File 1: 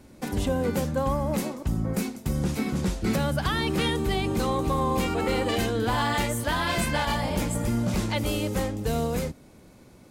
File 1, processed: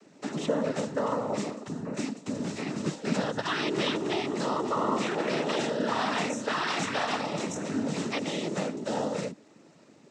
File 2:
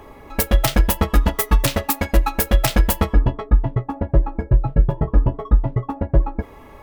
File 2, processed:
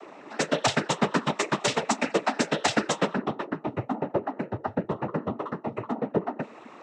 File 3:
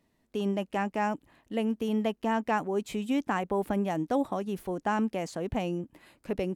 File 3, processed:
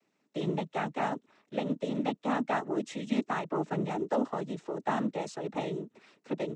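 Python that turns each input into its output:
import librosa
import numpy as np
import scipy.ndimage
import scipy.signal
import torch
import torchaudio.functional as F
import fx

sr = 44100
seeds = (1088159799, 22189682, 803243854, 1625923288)

y = scipy.signal.sosfilt(scipy.signal.butter(4, 190.0, 'highpass', fs=sr, output='sos'), x)
y = fx.noise_vocoder(y, sr, seeds[0], bands=12)
y = F.gain(torch.from_numpy(y), -1.5).numpy()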